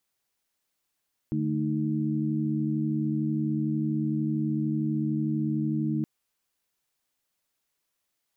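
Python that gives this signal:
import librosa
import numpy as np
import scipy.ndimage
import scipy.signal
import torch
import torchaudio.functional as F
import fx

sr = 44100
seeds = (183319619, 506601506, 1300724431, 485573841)

y = fx.chord(sr, length_s=4.72, notes=(50, 57, 63), wave='sine', level_db=-29.0)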